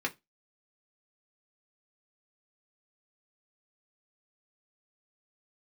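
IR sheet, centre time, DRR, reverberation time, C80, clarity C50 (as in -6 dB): 7 ms, -0.5 dB, not exponential, 31.5 dB, 22.5 dB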